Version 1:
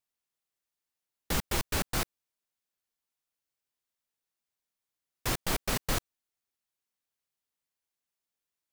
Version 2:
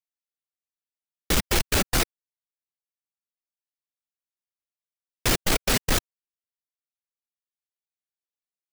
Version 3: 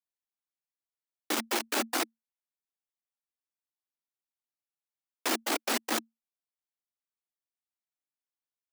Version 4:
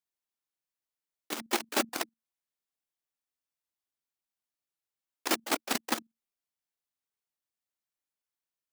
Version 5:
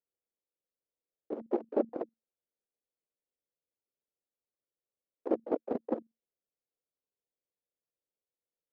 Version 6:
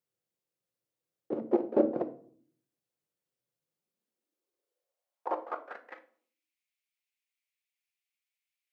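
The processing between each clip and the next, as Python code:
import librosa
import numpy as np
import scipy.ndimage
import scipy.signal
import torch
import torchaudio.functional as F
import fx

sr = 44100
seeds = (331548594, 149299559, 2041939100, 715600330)

y1 = fx.dereverb_blind(x, sr, rt60_s=1.5)
y1 = fx.graphic_eq_10(y1, sr, hz=(125, 1000, 16000), db=(-4, -5, -5))
y1 = fx.leveller(y1, sr, passes=5)
y1 = y1 * 10.0 ** (1.0 / 20.0)
y2 = scipy.signal.sosfilt(scipy.signal.cheby1(6, 6, 220.0, 'highpass', fs=sr, output='sos'), y1)
y2 = y2 * 10.0 ** (-1.5 / 20.0)
y3 = fx.level_steps(y2, sr, step_db=14)
y3 = y3 * 10.0 ** (3.5 / 20.0)
y4 = fx.lowpass_res(y3, sr, hz=500.0, q=3.5)
y4 = y4 * 10.0 ** (-2.0 / 20.0)
y5 = fx.filter_sweep_highpass(y4, sr, from_hz=120.0, to_hz=2300.0, start_s=3.55, end_s=6.08, q=4.1)
y5 = fx.room_shoebox(y5, sr, seeds[0], volume_m3=580.0, walls='furnished', distance_m=0.91)
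y5 = y5 * 10.0 ** (2.5 / 20.0)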